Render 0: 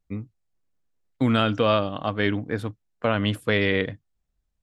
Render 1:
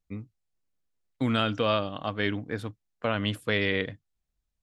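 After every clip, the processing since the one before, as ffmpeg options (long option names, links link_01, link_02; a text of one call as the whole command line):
ffmpeg -i in.wav -af "equalizer=frequency=5100:width=0.4:gain=4,volume=-5.5dB" out.wav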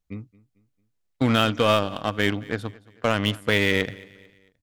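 ffmpeg -i in.wav -filter_complex "[0:a]asplit=2[link_01][link_02];[link_02]acrusher=bits=3:mix=0:aa=0.5,volume=-5dB[link_03];[link_01][link_03]amix=inputs=2:normalize=0,aecho=1:1:223|446|669:0.0794|0.0334|0.014,volume=2dB" out.wav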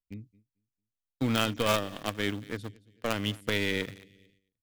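ffmpeg -i in.wav -filter_complex "[0:a]agate=range=-11dB:threshold=-54dB:ratio=16:detection=peak,acrossover=split=470|2200[link_01][link_02][link_03];[link_02]acrusher=bits=4:dc=4:mix=0:aa=0.000001[link_04];[link_01][link_04][link_03]amix=inputs=3:normalize=0,volume=-6.5dB" out.wav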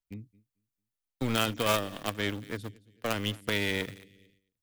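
ffmpeg -i in.wav -filter_complex "[0:a]acrossover=split=490|7300[link_01][link_02][link_03];[link_01]aeval=exprs='clip(val(0),-1,0.0141)':channel_layout=same[link_04];[link_03]aphaser=in_gain=1:out_gain=1:delay=1.8:decay=0.75:speed=0.89:type=sinusoidal[link_05];[link_04][link_02][link_05]amix=inputs=3:normalize=0" out.wav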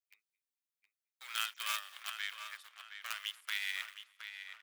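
ffmpeg -i in.wav -filter_complex "[0:a]highpass=frequency=1300:width=0.5412,highpass=frequency=1300:width=1.3066,asplit=2[link_01][link_02];[link_02]adelay=717,lowpass=frequency=3900:poles=1,volume=-8.5dB,asplit=2[link_03][link_04];[link_04]adelay=717,lowpass=frequency=3900:poles=1,volume=0.39,asplit=2[link_05][link_06];[link_06]adelay=717,lowpass=frequency=3900:poles=1,volume=0.39,asplit=2[link_07][link_08];[link_08]adelay=717,lowpass=frequency=3900:poles=1,volume=0.39[link_09];[link_01][link_03][link_05][link_07][link_09]amix=inputs=5:normalize=0,volume=-5.5dB" out.wav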